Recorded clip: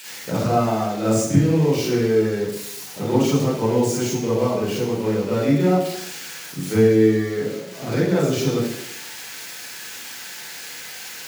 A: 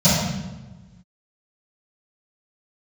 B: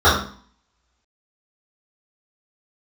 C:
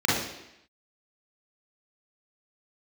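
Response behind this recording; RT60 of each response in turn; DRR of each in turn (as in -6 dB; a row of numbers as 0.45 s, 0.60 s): C; no single decay rate, 0.45 s, 0.85 s; -17.0 dB, -13.0 dB, -7.5 dB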